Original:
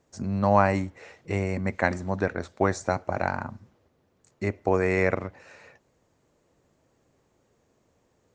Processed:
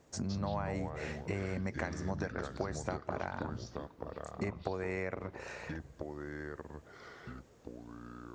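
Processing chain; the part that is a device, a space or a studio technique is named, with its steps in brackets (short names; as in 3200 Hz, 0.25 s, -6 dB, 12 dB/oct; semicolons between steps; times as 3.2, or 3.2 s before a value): 1.62–2.32 bell 5500 Hz +12.5 dB 0.46 oct; serial compression, peaks first (compressor 4:1, threshold -32 dBFS, peak gain reduction 15.5 dB; compressor 2:1, threshold -42 dBFS, peak gain reduction 8.5 dB); echoes that change speed 0.13 s, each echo -4 st, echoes 2, each echo -6 dB; gain +4 dB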